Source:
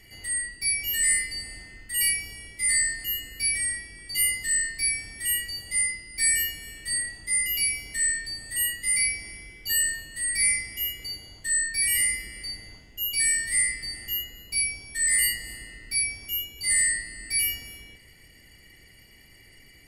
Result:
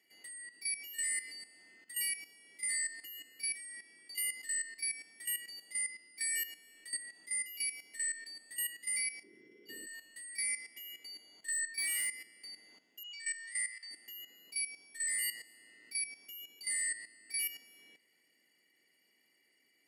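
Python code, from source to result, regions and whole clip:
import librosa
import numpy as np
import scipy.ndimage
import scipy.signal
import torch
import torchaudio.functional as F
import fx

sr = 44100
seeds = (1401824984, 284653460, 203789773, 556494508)

y = fx.chain(x, sr, fx.lowpass(hz=1600.0, slope=6),
    fx.low_shelf_res(hz=550.0, db=9.5, q=3.0),
    fx.room_flutter(wall_m=10.4, rt60_s=0.97), at=(9.23, 9.87))
y = fx.chain(y, sr, fx.overload_stage(gain_db=19.5),
    fx.doubler(ms=17.0, db=-8.5), at=(10.73, 12.1))
y = fx.chain(y, sr, fx.brickwall_bandpass(low_hz=790.0, high_hz=9100.0),
    fx.high_shelf(hz=4700.0, db=-3.5),
    fx.doubler(ms=29.0, db=-13.5), at=(13.03, 13.91))
y = scipy.signal.sosfilt(scipy.signal.butter(4, 240.0, 'highpass', fs=sr, output='sos'), y)
y = fx.level_steps(y, sr, step_db=13)
y = F.gain(torch.from_numpy(y), -8.5).numpy()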